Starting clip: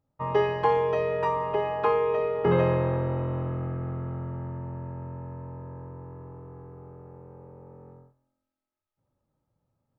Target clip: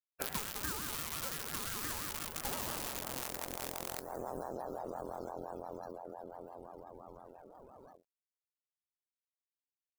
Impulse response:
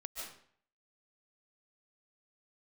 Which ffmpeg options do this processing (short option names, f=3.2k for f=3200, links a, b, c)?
-filter_complex "[0:a]asplit=2[a][b];[b]aecho=0:1:34.99|207:0.501|0.282[c];[a][c]amix=inputs=2:normalize=0,acrusher=bits=5:dc=4:mix=0:aa=0.000001,crystalizer=i=5.5:c=0,afftdn=nr=36:nf=-40,acompressor=threshold=-32dB:ratio=5,aeval=exprs='val(0)*sin(2*PI*580*n/s+580*0.35/5.8*sin(2*PI*5.8*n/s))':c=same,volume=-1dB"